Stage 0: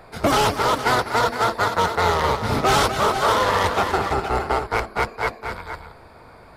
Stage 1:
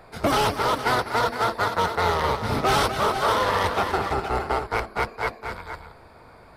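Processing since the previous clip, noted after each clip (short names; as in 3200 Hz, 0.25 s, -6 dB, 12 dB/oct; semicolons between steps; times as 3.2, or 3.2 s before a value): dynamic EQ 7000 Hz, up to -7 dB, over -51 dBFS, Q 4.8; gain -3 dB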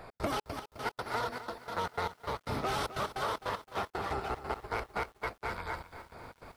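compressor 4:1, threshold -33 dBFS, peak gain reduction 13.5 dB; step gate "x.xx.x..x.xxxx." 152 bpm -60 dB; lo-fi delay 0.259 s, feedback 55%, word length 9-bit, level -13 dB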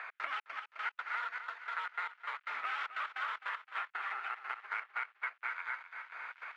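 careless resampling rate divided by 4×, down none, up hold; Butterworth band-pass 1900 Hz, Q 1.4; three-band squash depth 70%; gain +3.5 dB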